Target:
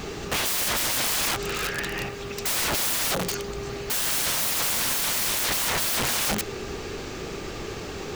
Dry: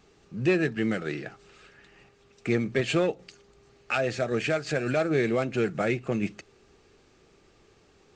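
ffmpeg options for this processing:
-af "apsyclip=29.5dB,aeval=exprs='(mod(6.31*val(0)+1,2)-1)/6.31':c=same,acrusher=bits=7:mix=0:aa=0.000001,volume=-4dB"

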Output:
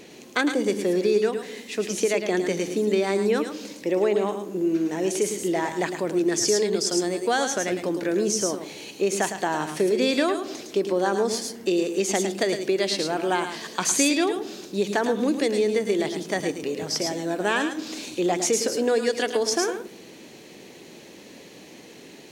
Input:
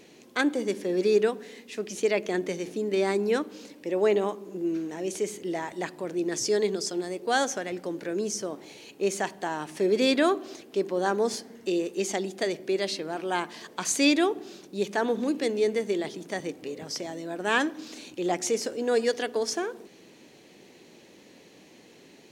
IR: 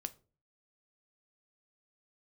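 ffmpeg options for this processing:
-filter_complex "[0:a]acompressor=threshold=-26dB:ratio=6,asplit=2[a][b];[1:a]atrim=start_sample=2205,highshelf=f=4.8k:g=11.5,adelay=108[c];[b][c]afir=irnorm=-1:irlink=0,volume=-7.5dB[d];[a][d]amix=inputs=2:normalize=0,volume=7dB"

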